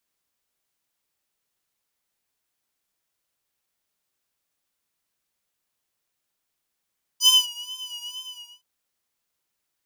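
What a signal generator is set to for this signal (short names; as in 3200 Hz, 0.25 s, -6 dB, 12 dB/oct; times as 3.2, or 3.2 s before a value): synth patch with vibrato B5, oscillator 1 square, interval +19 st, detune 7 cents, oscillator 2 level 0 dB, sub -21 dB, noise -28 dB, filter highpass, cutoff 2700 Hz, Q 2.4, filter envelope 1 oct, filter decay 0.09 s, filter sustain 20%, attack 68 ms, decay 0.20 s, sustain -23.5 dB, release 0.48 s, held 0.94 s, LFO 2.2 Hz, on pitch 57 cents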